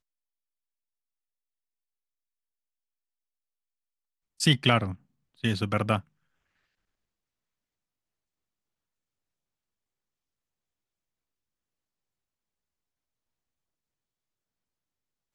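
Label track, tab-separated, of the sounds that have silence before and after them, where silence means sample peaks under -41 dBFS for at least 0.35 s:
4.400000	4.940000	sound
5.440000	6.010000	sound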